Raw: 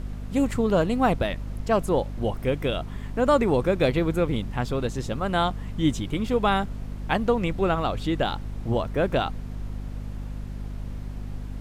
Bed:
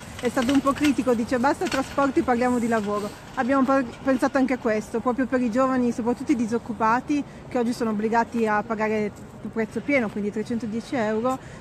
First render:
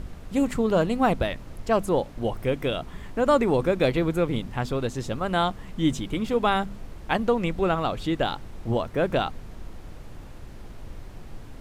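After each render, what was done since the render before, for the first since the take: de-hum 50 Hz, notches 5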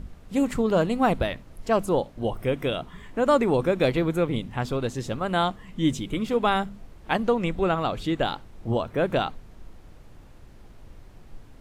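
noise print and reduce 7 dB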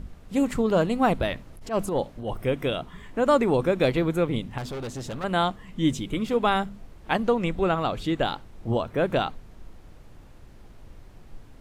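1.21–2.37 transient shaper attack -12 dB, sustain +2 dB; 4.58–5.24 hard clip -30.5 dBFS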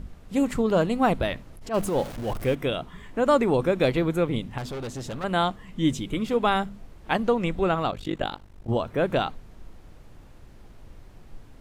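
1.74–2.55 zero-crossing step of -34 dBFS; 7.91–8.69 AM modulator 49 Hz, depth 90%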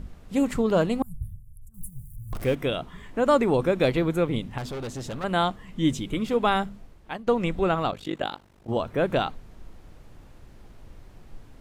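1.02–2.33 inverse Chebyshev band-stop 300–4700 Hz, stop band 50 dB; 6.66–7.27 fade out, to -18 dB; 7.94–8.77 HPF 190 Hz 6 dB/oct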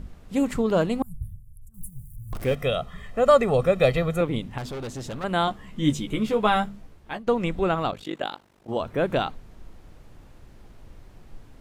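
2.51–4.21 comb 1.6 ms, depth 79%; 5.46–7.19 doubler 14 ms -4.5 dB; 8.03–8.81 low shelf 120 Hz -12 dB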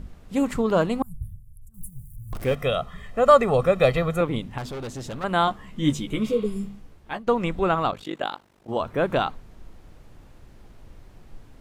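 6.29–6.83 spectral repair 540–4600 Hz both; dynamic EQ 1100 Hz, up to +5 dB, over -39 dBFS, Q 1.5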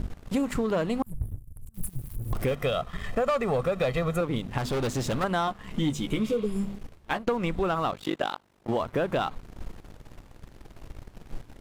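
sample leveller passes 2; compressor 5:1, threshold -25 dBFS, peak gain reduction 15.5 dB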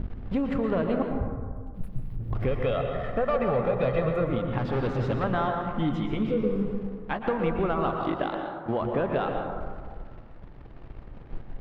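air absorption 350 m; plate-style reverb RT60 1.7 s, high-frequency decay 0.35×, pre-delay 0.105 s, DRR 2.5 dB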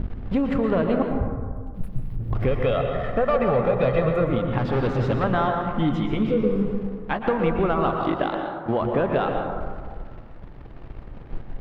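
gain +4.5 dB

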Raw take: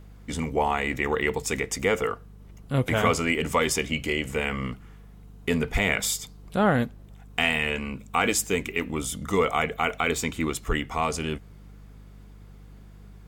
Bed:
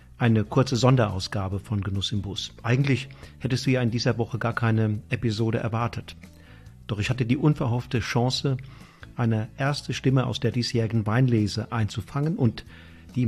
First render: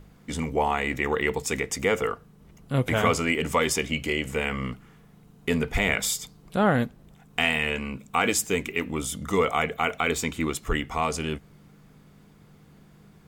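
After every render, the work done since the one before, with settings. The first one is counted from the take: de-hum 50 Hz, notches 2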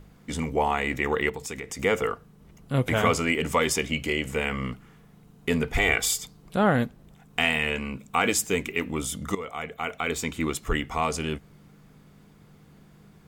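1.29–1.79 compressor 3:1, threshold -33 dBFS; 5.78–6.2 comb 2.6 ms; 9.35–10.49 fade in, from -15.5 dB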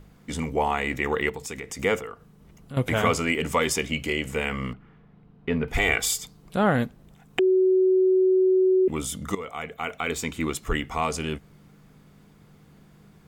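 1.99–2.77 compressor 2:1, threshold -41 dBFS; 4.73–5.68 air absorption 350 m; 7.39–8.88 bleep 374 Hz -16 dBFS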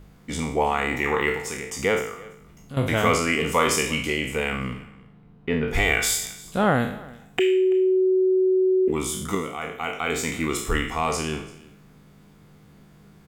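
spectral trails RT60 0.61 s; echo 0.335 s -22 dB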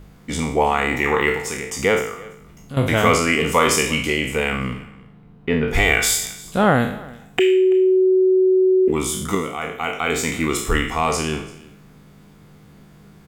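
gain +4.5 dB; limiter -1 dBFS, peak gain reduction 1 dB

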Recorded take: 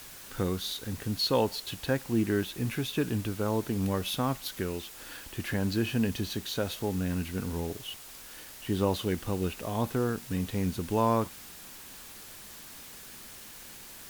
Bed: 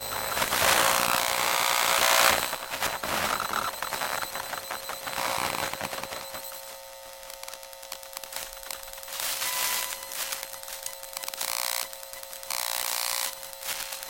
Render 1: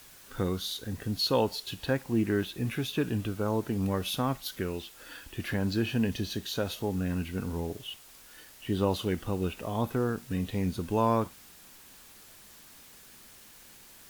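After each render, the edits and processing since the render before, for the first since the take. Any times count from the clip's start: noise print and reduce 6 dB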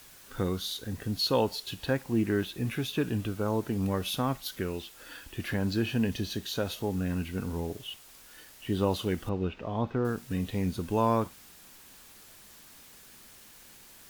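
9.29–10.05 air absorption 210 m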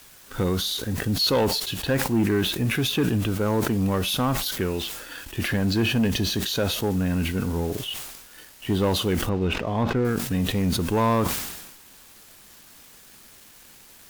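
sample leveller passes 2; sustainer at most 50 dB/s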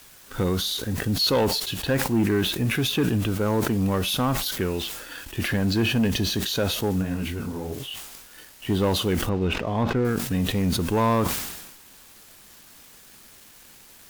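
7.01–8.11 detuned doubles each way 34 cents -> 49 cents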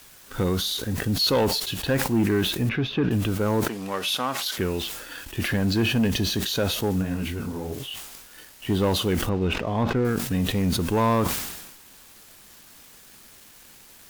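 2.69–3.11 air absorption 270 m; 3.68–4.58 weighting filter A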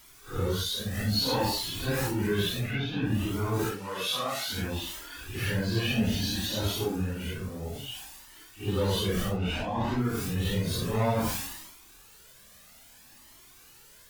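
phase scrambler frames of 0.2 s; cascading flanger rising 0.6 Hz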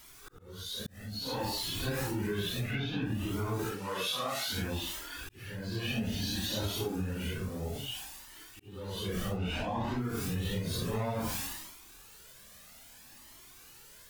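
compressor, threshold -30 dBFS, peak gain reduction 8.5 dB; auto swell 0.592 s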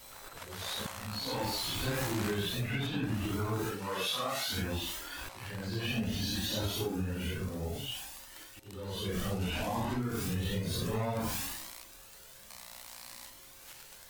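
add bed -20.5 dB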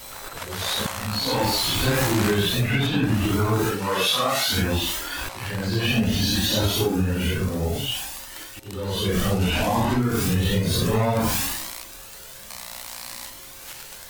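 gain +12 dB

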